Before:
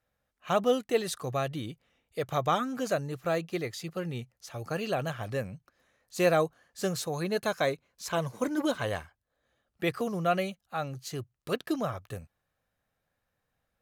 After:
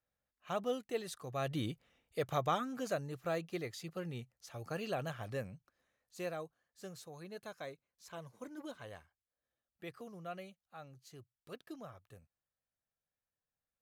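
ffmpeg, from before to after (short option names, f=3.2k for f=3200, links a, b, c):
-af "afade=t=in:st=1.33:d=0.31:silence=0.281838,afade=t=out:st=1.64:d=0.95:silence=0.421697,afade=t=out:st=5.43:d=0.92:silence=0.298538"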